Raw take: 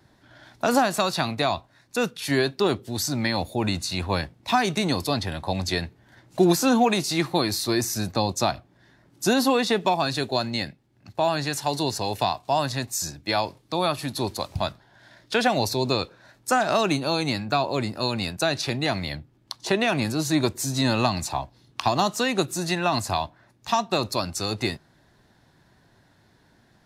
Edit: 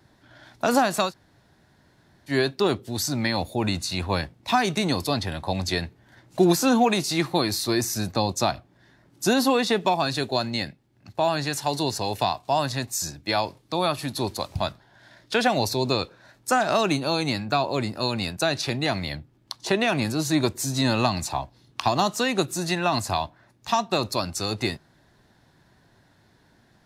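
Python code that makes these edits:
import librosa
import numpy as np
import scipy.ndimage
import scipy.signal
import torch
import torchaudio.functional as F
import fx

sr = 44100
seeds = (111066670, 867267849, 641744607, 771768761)

y = fx.edit(x, sr, fx.room_tone_fill(start_s=1.09, length_s=1.22, crossfade_s=0.1), tone=tone)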